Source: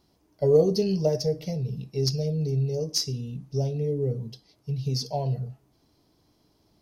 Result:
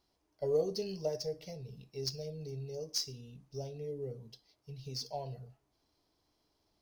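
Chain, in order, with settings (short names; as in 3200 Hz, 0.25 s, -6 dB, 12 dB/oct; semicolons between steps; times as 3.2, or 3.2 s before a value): median filter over 3 samples; bell 160 Hz -10.5 dB 2.4 oct; gain -7.5 dB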